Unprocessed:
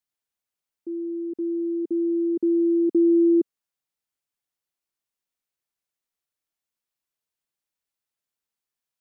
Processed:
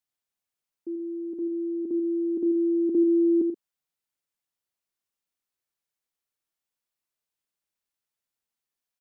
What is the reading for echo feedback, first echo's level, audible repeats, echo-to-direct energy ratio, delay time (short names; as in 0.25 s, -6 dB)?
no steady repeat, -9.0 dB, 2, -8.0 dB, 87 ms